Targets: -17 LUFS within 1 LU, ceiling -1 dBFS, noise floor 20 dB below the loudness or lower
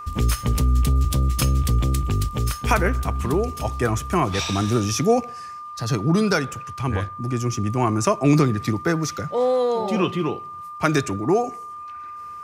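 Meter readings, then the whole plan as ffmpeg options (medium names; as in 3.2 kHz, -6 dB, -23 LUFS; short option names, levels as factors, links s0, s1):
steady tone 1.2 kHz; tone level -33 dBFS; loudness -22.0 LUFS; peak level -4.5 dBFS; loudness target -17.0 LUFS
-> -af "bandreject=f=1200:w=30"
-af "volume=1.78,alimiter=limit=0.891:level=0:latency=1"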